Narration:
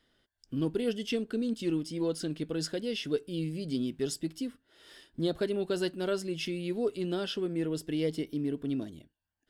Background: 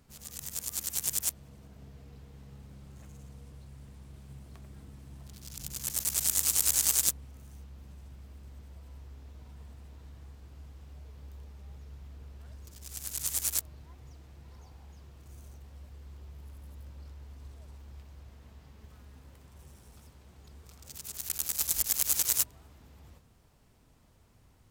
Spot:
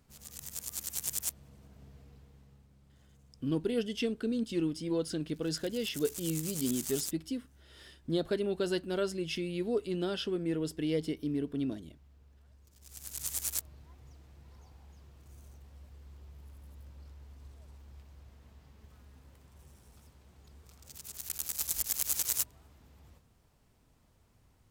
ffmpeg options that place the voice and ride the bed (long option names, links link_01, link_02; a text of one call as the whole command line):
ffmpeg -i stem1.wav -i stem2.wav -filter_complex "[0:a]adelay=2900,volume=-1dB[link_01];[1:a]volume=5dB,afade=type=out:start_time=1.95:duration=0.74:silence=0.354813,afade=type=in:start_time=12.71:duration=0.52:silence=0.354813[link_02];[link_01][link_02]amix=inputs=2:normalize=0" out.wav